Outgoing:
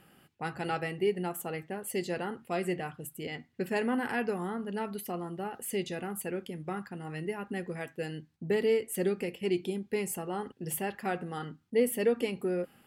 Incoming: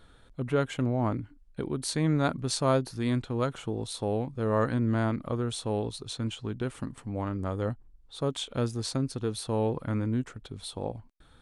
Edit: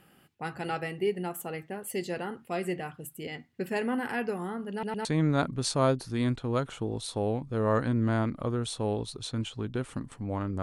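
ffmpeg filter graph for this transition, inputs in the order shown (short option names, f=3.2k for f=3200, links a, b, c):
-filter_complex "[0:a]apad=whole_dur=10.62,atrim=end=10.62,asplit=3[a][b][c];[a]atrim=end=4.832[d];[b]atrim=start=4.718:end=4.832[e];[c]atrim=start=4.718:end=4.832[f];[1:a]atrim=start=1.908:end=7.48[g];[d][e]acrossfade=d=0.004:c1=hsin:c2=hsin[h];[h][f]acrossfade=d=0.004:c1=hsin:c2=hsin[i];[i][g]acrossfade=d=0.004:c1=hsin:c2=hsin"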